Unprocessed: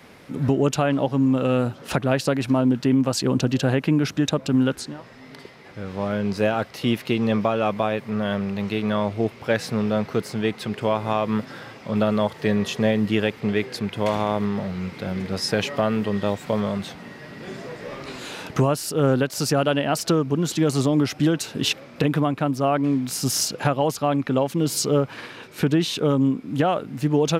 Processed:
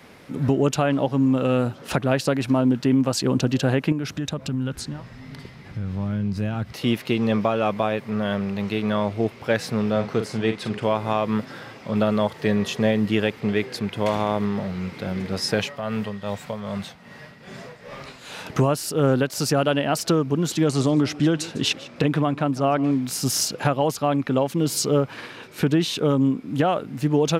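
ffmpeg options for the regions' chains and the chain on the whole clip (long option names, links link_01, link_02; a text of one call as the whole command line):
ffmpeg -i in.wav -filter_complex "[0:a]asettb=1/sr,asplit=3[link_01][link_02][link_03];[link_01]atrim=end=3.924[link_04];[link_02]atrim=start=3.92:end=6.73,asetpts=PTS-STARTPTS,afade=type=in:duration=0.004:curve=qsin,afade=type=out:start_time=2.806:duration=0.004:curve=qsin,asubboost=boost=12:cutoff=170,acompressor=threshold=-26dB:ratio=2.5:attack=3.2:release=140:knee=1:detection=peak[link_05];[link_03]atrim=start=6.726[link_06];[link_04][link_05]acrossfade=duration=0.004:curve1=hsin:curve2=qsin[link_07];[link_07][link_06]acrossfade=duration=0.004:curve1=qsin:curve2=hsin,asettb=1/sr,asplit=3[link_08][link_09][link_10];[link_08]atrim=end=9.914[link_11];[link_09]atrim=start=9.91:end=10.84,asetpts=PTS-STARTPTS,afade=type=in:duration=0.004:curve=qsin,afade=type=out:start_time=0.926:duration=0.004:curve=qsin,lowpass=10000,asplit=2[link_12][link_13];[link_13]adelay=45,volume=-8dB[link_14];[link_12][link_14]amix=inputs=2:normalize=0,atrim=end_sample=41013[link_15];[link_10]atrim=start=10.836[link_16];[link_11][link_15]acrossfade=duration=0.004:curve1=hsin:curve2=qsin[link_17];[link_17][link_16]acrossfade=duration=0.004:curve1=qsin:curve2=hsin,asettb=1/sr,asplit=3[link_18][link_19][link_20];[link_18]atrim=end=15.594[link_21];[link_19]atrim=start=15.59:end=18.46,asetpts=PTS-STARTPTS,afade=type=in:duration=0.004:curve=qsin,afade=type=out:start_time=2.866:duration=0.004:curve=qsin,equalizer=frequency=330:width=2.3:gain=-10.5,tremolo=f=2.5:d=0.62[link_22];[link_20]atrim=start=18.456[link_23];[link_21][link_22]acrossfade=duration=0.004:curve1=hsin:curve2=qsin[link_24];[link_24][link_23]acrossfade=duration=0.004:curve1=qsin:curve2=hsin,asettb=1/sr,asplit=3[link_25][link_26][link_27];[link_25]atrim=end=20.644[link_28];[link_26]atrim=start=20.64:end=22.91,asetpts=PTS-STARTPTS,afade=type=in:duration=0.004:curve=qsin,afade=type=out:start_time=2.266:duration=0.004:curve=qsin,lowpass=9400,aecho=1:1:152:0.119,atrim=end_sample=100107[link_29];[link_27]atrim=start=22.906[link_30];[link_28][link_29]acrossfade=duration=0.004:curve1=hsin:curve2=qsin[link_31];[link_31][link_30]acrossfade=duration=0.004:curve1=qsin:curve2=hsin" out.wav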